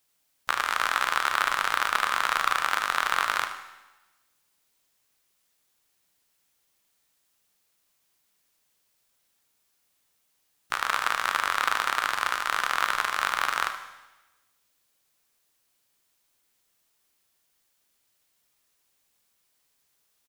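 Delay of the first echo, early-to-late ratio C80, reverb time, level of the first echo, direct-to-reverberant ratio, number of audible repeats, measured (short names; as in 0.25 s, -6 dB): 76 ms, 11.5 dB, 1.1 s, -12.5 dB, 6.0 dB, 1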